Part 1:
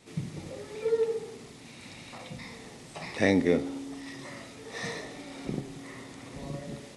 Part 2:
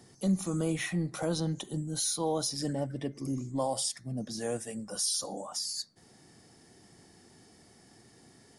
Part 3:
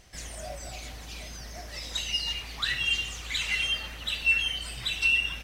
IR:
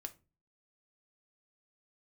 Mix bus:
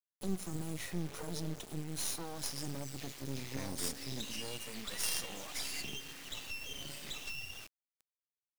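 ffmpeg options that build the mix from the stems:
-filter_complex "[0:a]adelay=350,volume=-10dB[a];[1:a]volume=-2.5dB[b];[2:a]highpass=1.5k,acompressor=threshold=-34dB:ratio=6,adelay=2250,volume=-3dB[c];[a][b][c]amix=inputs=3:normalize=0,acrossover=split=210|3000[d][e][f];[e]acompressor=threshold=-40dB:ratio=5[g];[d][g][f]amix=inputs=3:normalize=0,acrusher=bits=5:dc=4:mix=0:aa=0.000001"

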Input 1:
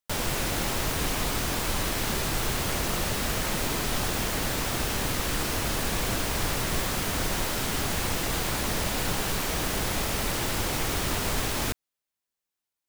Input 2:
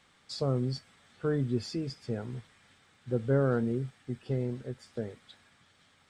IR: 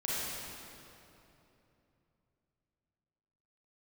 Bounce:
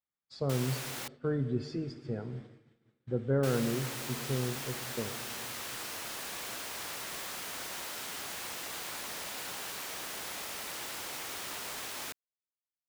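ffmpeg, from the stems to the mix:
-filter_complex "[0:a]highpass=f=820:p=1,adelay=400,volume=-9dB,asplit=3[a][b][c];[a]atrim=end=1.08,asetpts=PTS-STARTPTS,afade=t=out:st=1.076:d=0.004:c=hsin[d];[b]atrim=start=1.08:end=3.43,asetpts=PTS-STARTPTS,volume=0[e];[c]atrim=start=3.43,asetpts=PTS-STARTPTS,afade=t=in:d=0.004:c=hsin[f];[d][e][f]concat=n=3:v=0:a=1[g];[1:a]aemphasis=mode=reproduction:type=50fm,volume=-3.5dB,asplit=2[h][i];[i]volume=-17dB[j];[2:a]atrim=start_sample=2205[k];[j][k]afir=irnorm=-1:irlink=0[l];[g][h][l]amix=inputs=3:normalize=0,agate=range=-33dB:threshold=-44dB:ratio=3:detection=peak"

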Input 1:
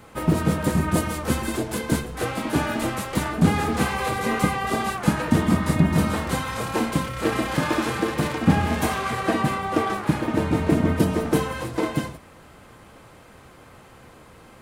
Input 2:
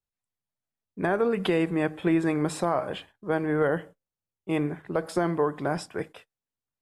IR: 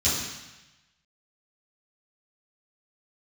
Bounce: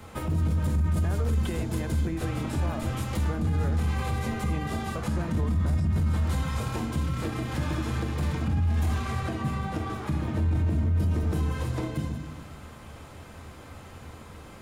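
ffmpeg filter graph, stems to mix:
-filter_complex "[0:a]lowshelf=f=60:g=6,alimiter=limit=-11dB:level=0:latency=1:release=306,volume=-0.5dB,asplit=2[a][b];[b]volume=-18.5dB[c];[1:a]volume=-1.5dB[d];[2:a]atrim=start_sample=2205[e];[c][e]afir=irnorm=-1:irlink=0[f];[a][d][f]amix=inputs=3:normalize=0,acrossover=split=140[g][h];[h]acompressor=threshold=-35dB:ratio=3[i];[g][i]amix=inputs=2:normalize=0,alimiter=limit=-19dB:level=0:latency=1:release=11"

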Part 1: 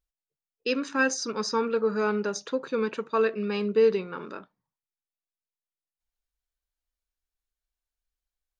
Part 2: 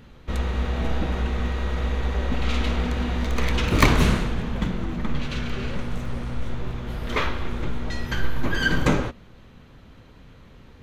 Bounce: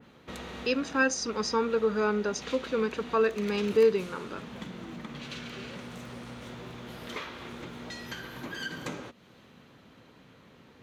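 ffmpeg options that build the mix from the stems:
-filter_complex "[0:a]volume=-1dB,asplit=2[a][b];[1:a]highpass=170,acompressor=threshold=-38dB:ratio=2.5,adynamicequalizer=threshold=0.00178:dfrequency=2600:dqfactor=0.7:tfrequency=2600:tqfactor=0.7:attack=5:release=100:ratio=0.375:range=2.5:mode=boostabove:tftype=highshelf,volume=-3dB[c];[b]apad=whole_len=477360[d];[c][d]sidechaincompress=threshold=-26dB:ratio=8:attack=9.2:release=1010[e];[a][e]amix=inputs=2:normalize=0"

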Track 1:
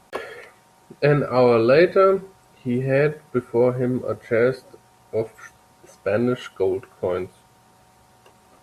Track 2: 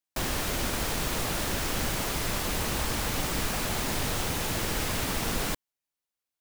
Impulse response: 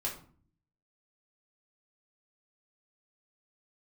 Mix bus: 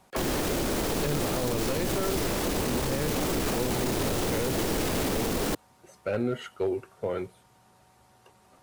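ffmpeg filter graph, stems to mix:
-filter_complex "[0:a]flanger=delay=0.3:depth=2.8:regen=-84:speed=0.68:shape=triangular,volume=-1dB[a];[1:a]equalizer=f=390:t=o:w=2:g=12,volume=3dB[b];[a][b]amix=inputs=2:normalize=0,aeval=exprs='clip(val(0),-1,0.0794)':c=same,acrossover=split=320|3000[c][d][e];[d]acompressor=threshold=-26dB:ratio=6[f];[c][f][e]amix=inputs=3:normalize=0,alimiter=limit=-19dB:level=0:latency=1:release=27"

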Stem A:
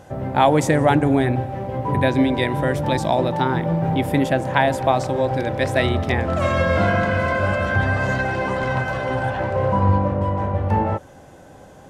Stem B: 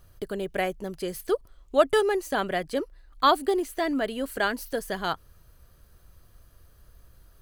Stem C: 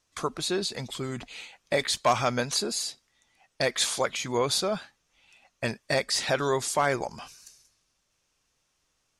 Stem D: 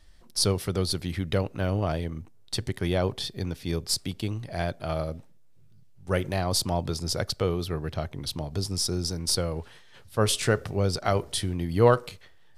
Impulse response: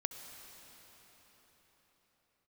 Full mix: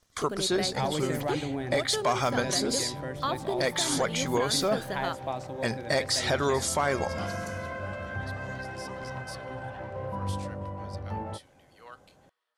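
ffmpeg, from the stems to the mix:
-filter_complex "[0:a]adelay=400,volume=-15.5dB[a];[1:a]aeval=exprs='sgn(val(0))*max(abs(val(0))-0.00316,0)':c=same,volume=-2dB,asplit=2[b][c];[c]volume=-22dB[d];[2:a]bandreject=f=2.6k:w=8.4,asoftclip=type=tanh:threshold=-12.5dB,volume=2dB[e];[3:a]highpass=1.3k,volume=-18.5dB,asplit=2[f][g];[g]volume=-22.5dB[h];[b][f]amix=inputs=2:normalize=0,highshelf=f=11k:g=-5.5,acompressor=threshold=-31dB:ratio=3,volume=0dB[i];[4:a]atrim=start_sample=2205[j];[d][h]amix=inputs=2:normalize=0[k];[k][j]afir=irnorm=-1:irlink=0[l];[a][e][i][l]amix=inputs=4:normalize=0,alimiter=limit=-16.5dB:level=0:latency=1:release=111"

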